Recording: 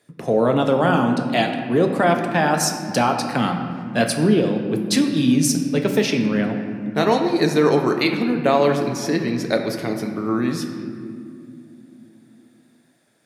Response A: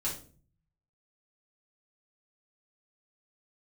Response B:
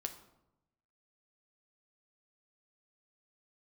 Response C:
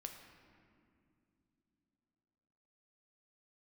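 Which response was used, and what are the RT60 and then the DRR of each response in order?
C; 0.40 s, 0.90 s, not exponential; -7.0, 4.5, 3.5 dB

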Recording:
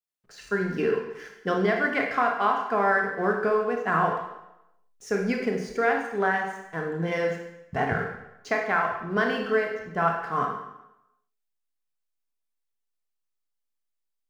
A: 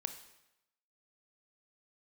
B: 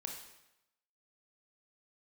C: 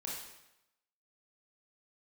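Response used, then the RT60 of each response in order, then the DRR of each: B; 0.90, 0.90, 0.90 s; 8.0, 1.0, -4.5 dB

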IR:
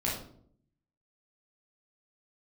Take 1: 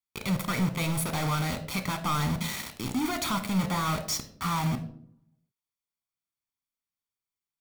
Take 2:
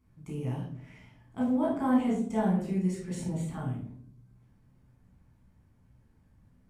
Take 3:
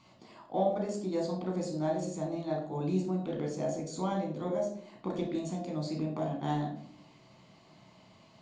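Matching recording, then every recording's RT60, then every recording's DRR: 2; 0.60, 0.60, 0.60 s; 7.5, -5.5, 0.0 dB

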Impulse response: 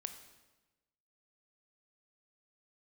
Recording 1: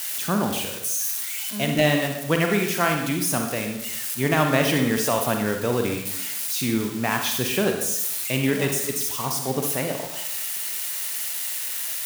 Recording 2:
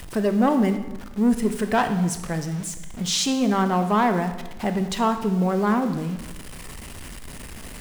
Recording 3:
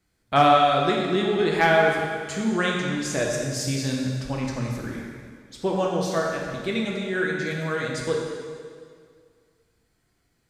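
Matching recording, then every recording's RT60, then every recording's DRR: 2; 0.80, 1.1, 2.0 s; 3.0, 7.5, -2.0 dB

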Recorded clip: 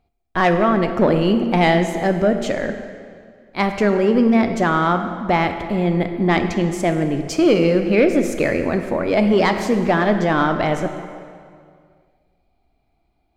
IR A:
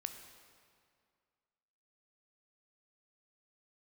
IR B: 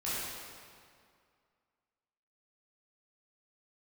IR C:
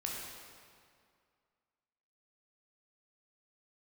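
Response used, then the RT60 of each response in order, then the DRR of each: A; 2.2, 2.2, 2.2 s; 6.5, -11.0, -3.0 dB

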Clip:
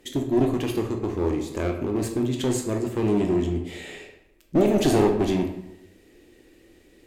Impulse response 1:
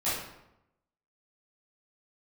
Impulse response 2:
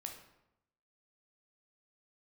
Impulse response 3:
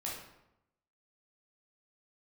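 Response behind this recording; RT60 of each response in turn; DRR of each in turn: 2; 0.85, 0.85, 0.85 s; -13.0, 2.5, -5.0 dB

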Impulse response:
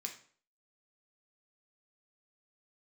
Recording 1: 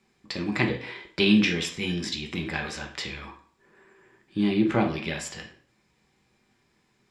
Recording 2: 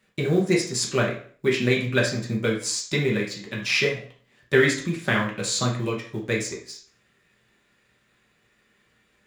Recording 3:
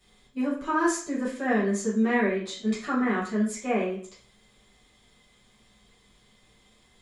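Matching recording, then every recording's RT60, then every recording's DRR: 1; 0.50, 0.50, 0.50 s; 2.0, -2.5, -11.0 dB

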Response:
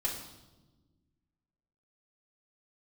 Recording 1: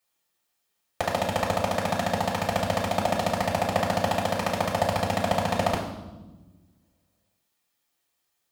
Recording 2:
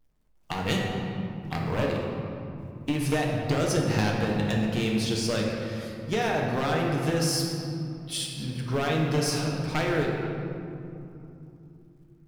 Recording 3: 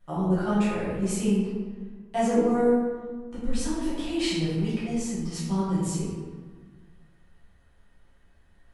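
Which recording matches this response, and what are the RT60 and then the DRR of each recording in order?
1; 1.2, 2.9, 1.6 s; -5.5, -1.5, -11.5 dB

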